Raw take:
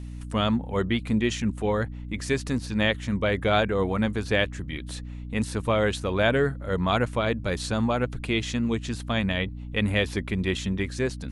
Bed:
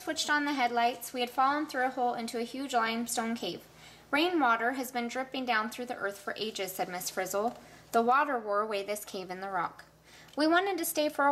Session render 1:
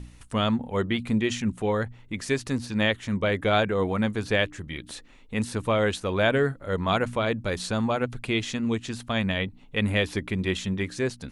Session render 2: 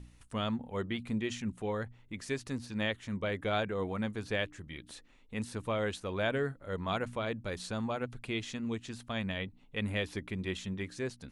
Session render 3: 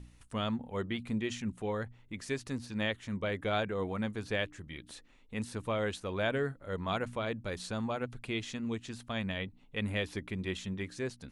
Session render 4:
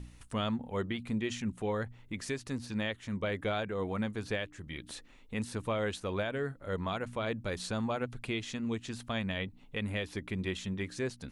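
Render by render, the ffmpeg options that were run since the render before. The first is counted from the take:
-af "bandreject=f=60:t=h:w=4,bandreject=f=120:t=h:w=4,bandreject=f=180:t=h:w=4,bandreject=f=240:t=h:w=4,bandreject=f=300:t=h:w=4"
-af "volume=0.335"
-af anull
-filter_complex "[0:a]asplit=2[s0][s1];[s1]acompressor=threshold=0.00708:ratio=6,volume=0.708[s2];[s0][s2]amix=inputs=2:normalize=0,alimiter=limit=0.0708:level=0:latency=1:release=405"

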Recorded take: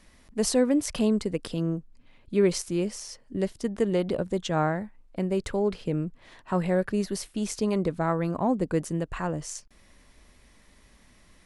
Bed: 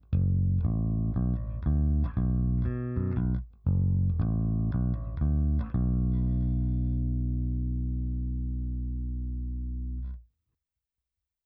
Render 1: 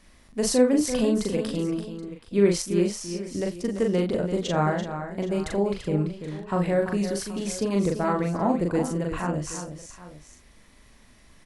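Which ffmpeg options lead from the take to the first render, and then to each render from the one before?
-filter_complex "[0:a]asplit=2[s0][s1];[s1]adelay=40,volume=0.708[s2];[s0][s2]amix=inputs=2:normalize=0,aecho=1:1:46|338|776:0.106|0.335|0.141"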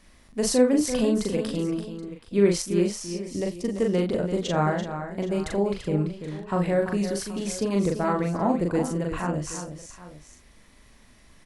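-filter_complex "[0:a]asettb=1/sr,asplit=3[s0][s1][s2];[s0]atrim=end=3.134[s3];[s1]atrim=start=3.13:end=3.83,asetpts=PTS-STARTPTS,afade=t=in:d=0.004:c=qsin,afade=t=out:st=0.696:d=0.004:c=qsin,equalizer=f=1500:w=5:g=-9.5[s4];[s2]atrim=start=3.826[s5];[s3][s4]acrossfade=d=0.004:c1=hsin:c2=qsin[s6];[s6][s5]acrossfade=d=0.004:c1=qsin:c2=hsin"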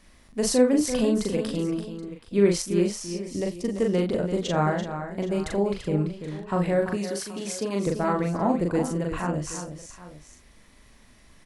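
-filter_complex "[0:a]asettb=1/sr,asplit=3[s0][s1][s2];[s0]atrim=end=6.954[s3];[s1]atrim=start=6.95:end=7.87,asetpts=PTS-STARTPTS,afade=t=in:d=0.004:c=qsin,afade=t=out:st=0.916:d=0.004:c=qsin,highpass=f=290:p=1[s4];[s2]atrim=start=7.866[s5];[s3][s4]acrossfade=d=0.004:c1=hsin:c2=qsin[s6];[s6][s5]acrossfade=d=0.004:c1=qsin:c2=hsin"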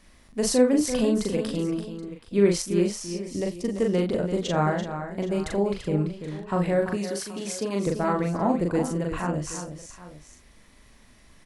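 -af anull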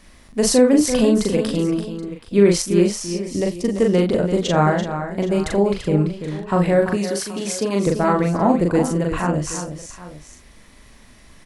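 -af "volume=2.24,alimiter=limit=0.708:level=0:latency=1"

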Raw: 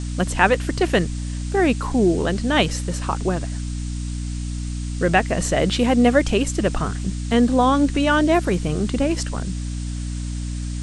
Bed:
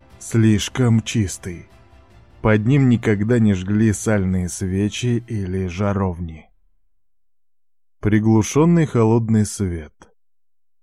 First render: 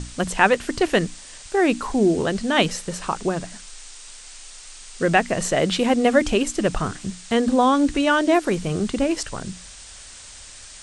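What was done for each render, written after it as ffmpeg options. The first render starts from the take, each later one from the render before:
-af "bandreject=f=60:t=h:w=6,bandreject=f=120:t=h:w=6,bandreject=f=180:t=h:w=6,bandreject=f=240:t=h:w=6,bandreject=f=300:t=h:w=6"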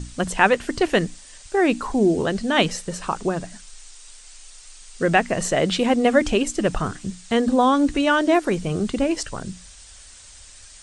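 -af "afftdn=nr=6:nf=-42"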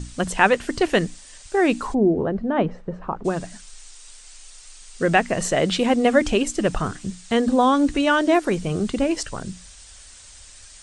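-filter_complex "[0:a]asplit=3[s0][s1][s2];[s0]afade=t=out:st=1.93:d=0.02[s3];[s1]lowpass=1000,afade=t=in:st=1.93:d=0.02,afade=t=out:st=3.24:d=0.02[s4];[s2]afade=t=in:st=3.24:d=0.02[s5];[s3][s4][s5]amix=inputs=3:normalize=0"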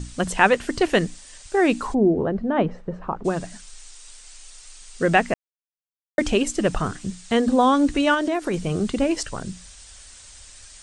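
-filter_complex "[0:a]asettb=1/sr,asplit=3[s0][s1][s2];[s0]atrim=end=8.144[s3];[s1]atrim=start=8.14:end=8.54,asetpts=PTS-STARTPTS,afade=t=in:d=0.004:c=qsin,afade=t=out:st=0.396:d=0.004:c=qsin,acompressor=threshold=0.112:ratio=6:attack=3.2:release=140:knee=1:detection=peak[s4];[s2]atrim=start=8.536[s5];[s3][s4]acrossfade=d=0.004:c1=hsin:c2=qsin[s6];[s6][s5]acrossfade=d=0.004:c1=qsin:c2=hsin,asplit=3[s7][s8][s9];[s7]atrim=end=5.34,asetpts=PTS-STARTPTS,afade=t=out:st=5.336:d=0.004:c=hsin[s10];[s8]atrim=start=5.34:end=6.18,asetpts=PTS-STARTPTS,volume=0[s11];[s9]atrim=start=6.18,asetpts=PTS-STARTPTS,afade=t=in:d=0.004:c=hsin[s12];[s10][s11][s12]concat=n=3:v=0:a=1"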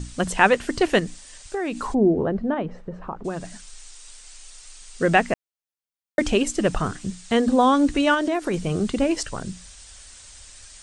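-filter_complex "[0:a]asettb=1/sr,asplit=3[s0][s1][s2];[s0]atrim=end=0.994[s3];[s1]atrim=start=0.99:end=1.87,asetpts=PTS-STARTPTS,afade=t=in:d=0.004:c=qsin,afade=t=out:st=0.876:d=0.004:c=qsin,acompressor=threshold=0.0708:ratio=6:attack=3.2:release=140:knee=1:detection=peak[s4];[s2]atrim=start=1.866[s5];[s3][s4]acrossfade=d=0.004:c1=hsin:c2=qsin[s6];[s6][s5]acrossfade=d=0.004:c1=qsin:c2=hsin,asettb=1/sr,asplit=3[s7][s8][s9];[s7]atrim=end=2.544[s10];[s8]atrim=start=2.54:end=3.45,asetpts=PTS-STARTPTS,afade=t=in:d=0.004:c=qsin,afade=t=out:st=0.906:d=0.004:c=qsin,acompressor=threshold=0.02:ratio=1.5:attack=3.2:release=140:knee=1:detection=peak[s11];[s9]atrim=start=3.446[s12];[s10][s11]acrossfade=d=0.004:c1=hsin:c2=qsin[s13];[s13][s12]acrossfade=d=0.004:c1=qsin:c2=hsin"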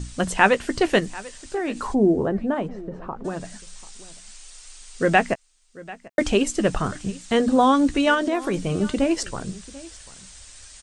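-filter_complex "[0:a]asplit=2[s0][s1];[s1]adelay=15,volume=0.2[s2];[s0][s2]amix=inputs=2:normalize=0,aecho=1:1:741:0.1"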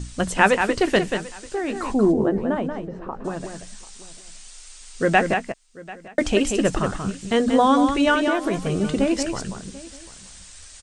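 -af "aecho=1:1:184:0.473"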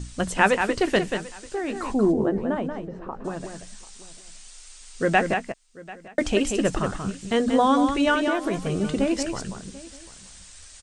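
-af "volume=0.75"

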